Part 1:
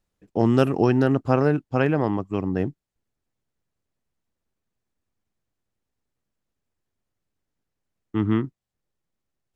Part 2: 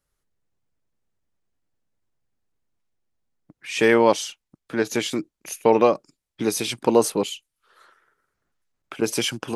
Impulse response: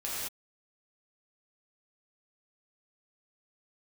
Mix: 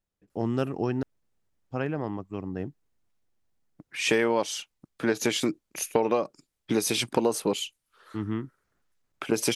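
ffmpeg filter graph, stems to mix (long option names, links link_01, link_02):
-filter_complex "[0:a]volume=-9dB,asplit=3[link_01][link_02][link_03];[link_01]atrim=end=1.03,asetpts=PTS-STARTPTS,afade=type=out:start_time=1.026:duration=0.004:curve=hsin[link_04];[link_02]atrim=start=1.03:end=1.69,asetpts=PTS-STARTPTS,volume=0[link_05];[link_03]atrim=start=1.69,asetpts=PTS-STARTPTS,afade=type=in:duration=0.004:curve=hsin[link_06];[link_04][link_05][link_06]concat=n=3:v=0:a=1[link_07];[1:a]acompressor=threshold=-22dB:ratio=6,adelay=300,volume=1.5dB[link_08];[link_07][link_08]amix=inputs=2:normalize=0"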